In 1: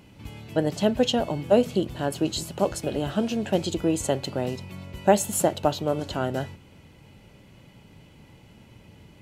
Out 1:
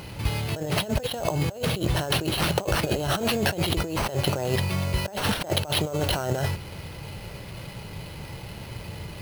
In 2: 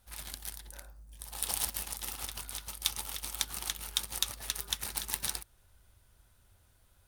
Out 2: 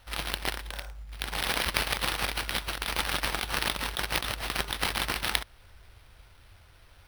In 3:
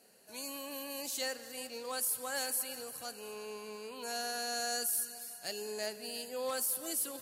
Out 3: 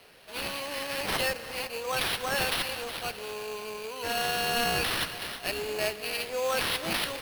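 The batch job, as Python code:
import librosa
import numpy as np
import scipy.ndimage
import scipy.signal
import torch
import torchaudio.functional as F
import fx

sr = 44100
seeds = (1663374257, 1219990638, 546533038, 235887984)

y = fx.peak_eq(x, sr, hz=250.0, db=-11.0, octaves=0.74)
y = fx.over_compress(y, sr, threshold_db=-36.0, ratio=-1.0)
y = fx.sample_hold(y, sr, seeds[0], rate_hz=7100.0, jitter_pct=0)
y = F.gain(torch.from_numpy(y), 8.5).numpy()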